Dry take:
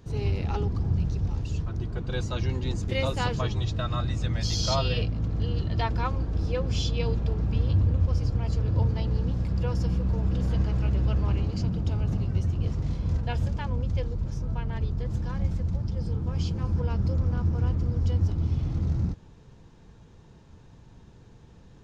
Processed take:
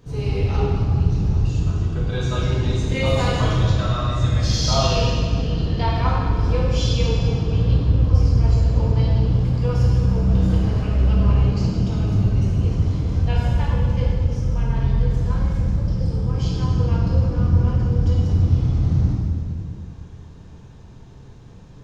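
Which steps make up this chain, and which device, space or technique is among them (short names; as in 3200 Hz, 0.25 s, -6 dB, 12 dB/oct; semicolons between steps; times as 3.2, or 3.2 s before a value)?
stairwell (reverb RT60 2.1 s, pre-delay 3 ms, DRR -6 dB)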